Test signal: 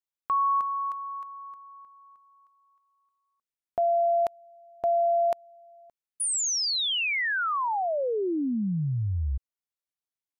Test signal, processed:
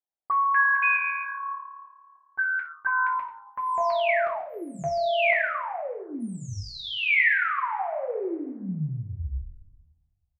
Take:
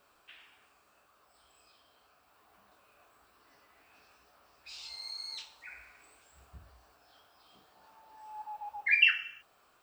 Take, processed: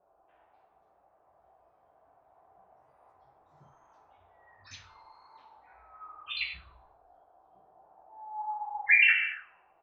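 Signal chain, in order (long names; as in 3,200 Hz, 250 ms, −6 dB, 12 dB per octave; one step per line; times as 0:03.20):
on a send: echo with shifted repeats 136 ms, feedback 37%, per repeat −36 Hz, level −11.5 dB
on the sum: coupled-rooms reverb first 0.48 s, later 1.6 s, from −17 dB, DRR −2.5 dB
delay with pitch and tempo change per echo 346 ms, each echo +7 semitones, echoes 2
envelope-controlled low-pass 720–2,200 Hz up, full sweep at −23 dBFS
level −8 dB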